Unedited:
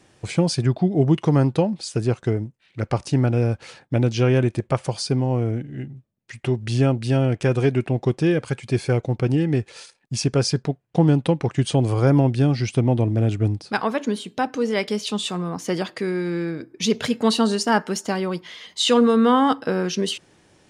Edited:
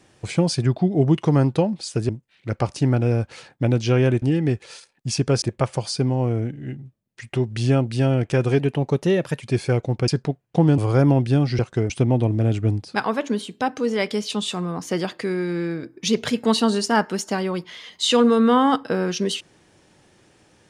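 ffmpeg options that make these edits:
-filter_complex "[0:a]asplit=10[a][b][c][d][e][f][g][h][i][j];[a]atrim=end=2.092[k];[b]atrim=start=2.398:end=4.532[l];[c]atrim=start=9.278:end=10.482[m];[d]atrim=start=4.528:end=7.704[n];[e]atrim=start=7.7:end=8.62,asetpts=PTS-STARTPTS,asetrate=48951,aresample=44100,atrim=end_sample=36551,asetpts=PTS-STARTPTS[o];[f]atrim=start=8.616:end=9.282[p];[g]atrim=start=10.478:end=11.182[q];[h]atrim=start=11.858:end=12.672[r];[i]atrim=start=2.088:end=2.402[s];[j]atrim=start=12.668[t];[k][l]acrossfade=d=0.004:c1=hsin:c2=hsin[u];[u][m]acrossfade=d=0.004:c1=hsin:c2=hsin[v];[v][n]acrossfade=d=0.004:c1=hsin:c2=hsin[w];[w][o]acrossfade=d=0.004:c1=hsin:c2=hsin[x];[x][p]acrossfade=d=0.004:c1=hsin:c2=hsin[y];[y][q]acrossfade=d=0.004:c1=hsin:c2=hsin[z];[z][r]acrossfade=d=0.004:c1=hsin:c2=hsin[aa];[aa][s]acrossfade=d=0.004:c1=hsin:c2=hsin[ab];[ab][t]acrossfade=d=0.004:c1=hsin:c2=hsin"

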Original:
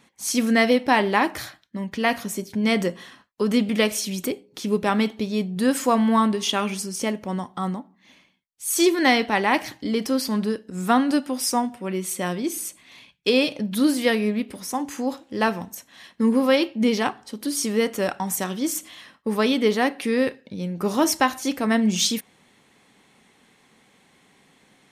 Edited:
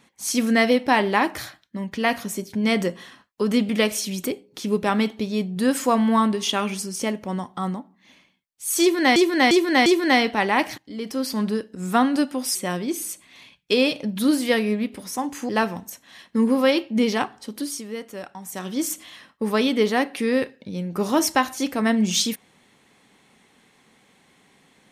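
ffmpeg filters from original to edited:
-filter_complex "[0:a]asplit=9[a][b][c][d][e][f][g][h][i];[a]atrim=end=9.162[j];[b]atrim=start=8.808:end=9.162[k];[c]atrim=start=8.808:end=9.162[l];[d]atrim=start=8.808:end=9.73,asetpts=PTS-STARTPTS,afade=t=out:st=0.918:d=0.004:c=hsin:silence=0.133352[m];[e]atrim=start=9.73:end=11.502,asetpts=PTS-STARTPTS,afade=t=in:d=0.63:silence=0.133352[n];[f]atrim=start=12.108:end=15.052[o];[g]atrim=start=15.338:end=17.68,asetpts=PTS-STARTPTS,afade=t=out:st=2.062:d=0.28:silence=0.281838[p];[h]atrim=start=17.68:end=18.33,asetpts=PTS-STARTPTS,volume=-11dB[q];[i]atrim=start=18.33,asetpts=PTS-STARTPTS,afade=t=in:d=0.28:silence=0.281838[r];[j][k]acrossfade=d=0.004:c1=hsin:c2=hsin[s];[s][l]acrossfade=d=0.004:c1=hsin:c2=hsin[t];[m][n]concat=n=2:v=0:a=1[u];[t][u]acrossfade=d=0.004:c1=hsin:c2=hsin[v];[v][o]acrossfade=d=0.004:c1=hsin:c2=hsin[w];[p][q][r]concat=n=3:v=0:a=1[x];[w][x]acrossfade=d=0.004:c1=hsin:c2=hsin"

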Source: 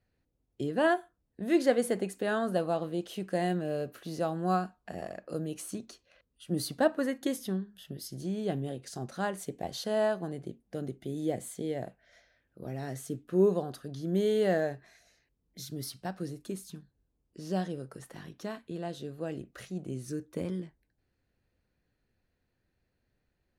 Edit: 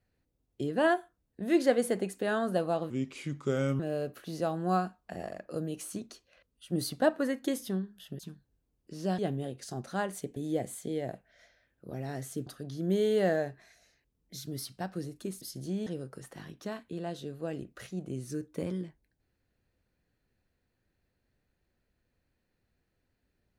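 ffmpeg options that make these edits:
-filter_complex "[0:a]asplit=9[a][b][c][d][e][f][g][h][i];[a]atrim=end=2.904[j];[b]atrim=start=2.9:end=3.58,asetpts=PTS-STARTPTS,asetrate=33516,aresample=44100[k];[c]atrim=start=3.576:end=7.982[l];[d]atrim=start=16.658:end=17.652[m];[e]atrim=start=8.428:end=9.612[n];[f]atrim=start=11.098:end=13.202[o];[g]atrim=start=13.708:end=16.662[p];[h]atrim=start=7.978:end=8.432[q];[i]atrim=start=17.648[r];[j][k]acrossfade=d=0.004:c1=hsin:c2=hsin[s];[s][l]acrossfade=d=0.004:c1=hsin:c2=hsin[t];[t][m]acrossfade=d=0.004:c1=hsin:c2=hsin[u];[u][n]acrossfade=d=0.004:c1=hsin:c2=hsin[v];[v][o]acrossfade=d=0.004:c1=hsin:c2=hsin[w];[w][p]acrossfade=d=0.004:c1=hsin:c2=hsin[x];[x][q]acrossfade=d=0.004:c1=hsin:c2=hsin[y];[y][r]acrossfade=d=0.004:c1=hsin:c2=hsin"

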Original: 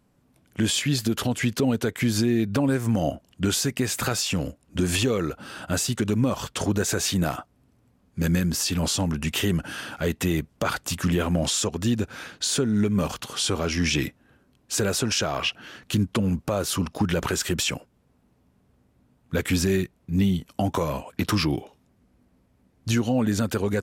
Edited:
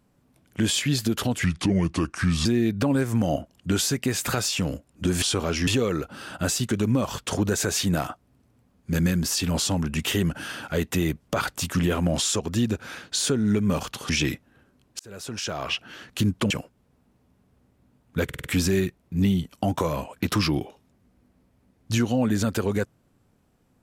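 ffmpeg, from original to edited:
-filter_complex "[0:a]asplit=12[a][b][c][d][e][f][g][h][i][j][k][l];[a]atrim=end=1.444[m];[b]atrim=start=1.44:end=2.19,asetpts=PTS-STARTPTS,asetrate=32634,aresample=44100[n];[c]atrim=start=2.186:end=4.962[o];[d]atrim=start=13.378:end=13.832[p];[e]atrim=start=4.958:end=13.382[q];[f]atrim=start=13.828:end=14.73,asetpts=PTS-STARTPTS,afade=t=out:st=0.898:d=0.004:c=hsin[r];[g]atrim=start=14.73:end=16.242,asetpts=PTS-STARTPTS,afade=t=in:d=0.92[s];[h]atrim=start=17.668:end=19.462[t];[i]atrim=start=19.408:end=19.462[u];[j]atrim=start=19.408:end=19.462[v];[k]atrim=start=19.408:end=19.462[w];[l]atrim=start=19.408[x];[m][n]acrossfade=d=0.004:c1=hsin:c2=hsin[y];[y][o]acrossfade=d=0.004:c1=hsin:c2=hsin[z];[z][p]acrossfade=d=0.004:c1=hsin:c2=hsin[aa];[aa][q]acrossfade=d=0.004:c1=hsin:c2=hsin[ab];[r][s]concat=n=2:v=0:a=1[ac];[ab][ac]acrossfade=d=0.004:c1=hsin:c2=hsin[ad];[ad][t]acrossfade=d=0.004:c1=hsin:c2=hsin[ae];[ae][u]acrossfade=d=0.004:c1=hsin:c2=hsin[af];[af][v]acrossfade=d=0.004:c1=hsin:c2=hsin[ag];[ag][w]acrossfade=d=0.004:c1=hsin:c2=hsin[ah];[ah][x]acrossfade=d=0.004:c1=hsin:c2=hsin"

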